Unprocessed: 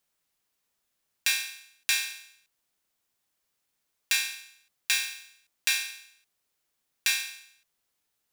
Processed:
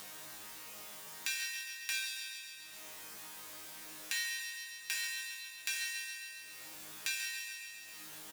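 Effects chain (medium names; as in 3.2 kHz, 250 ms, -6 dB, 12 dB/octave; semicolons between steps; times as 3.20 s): wow and flutter 20 cents; upward compressor, threshold -32 dBFS; chord resonator G#2 fifth, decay 0.64 s; feedback delay 136 ms, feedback 51%, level -7.5 dB; three bands compressed up and down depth 70%; trim +8 dB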